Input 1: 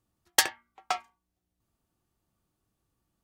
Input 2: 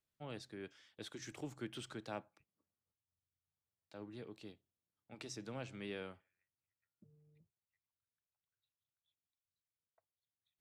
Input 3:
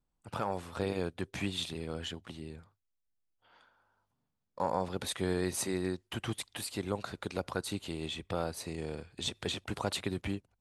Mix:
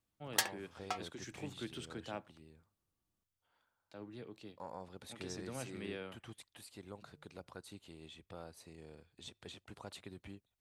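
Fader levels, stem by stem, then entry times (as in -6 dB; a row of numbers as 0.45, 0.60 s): -10.0, +0.5, -15.5 dB; 0.00, 0.00, 0.00 s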